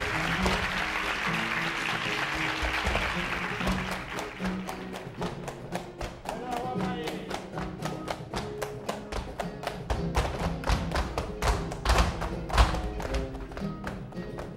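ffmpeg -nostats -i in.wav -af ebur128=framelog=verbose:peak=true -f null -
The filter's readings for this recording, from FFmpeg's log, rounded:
Integrated loudness:
  I:         -30.9 LUFS
  Threshold: -40.9 LUFS
Loudness range:
  LRA:         6.5 LU
  Threshold: -51.3 LUFS
  LRA low:   -35.0 LUFS
  LRA high:  -28.5 LUFS
True peak:
  Peak:       -8.0 dBFS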